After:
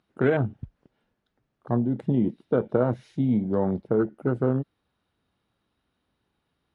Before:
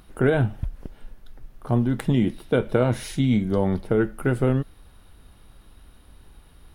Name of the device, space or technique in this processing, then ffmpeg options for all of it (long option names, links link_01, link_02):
over-cleaned archive recording: -af "highpass=130,lowpass=5700,afwtdn=0.0355,volume=-1.5dB"